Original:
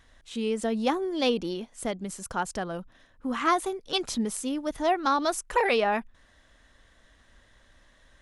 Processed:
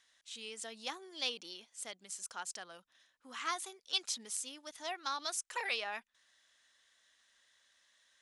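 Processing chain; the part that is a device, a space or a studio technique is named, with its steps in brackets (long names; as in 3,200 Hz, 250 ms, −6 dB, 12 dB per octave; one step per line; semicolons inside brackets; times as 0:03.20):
piezo pickup straight into a mixer (low-pass filter 6,700 Hz 12 dB per octave; first difference)
level +2 dB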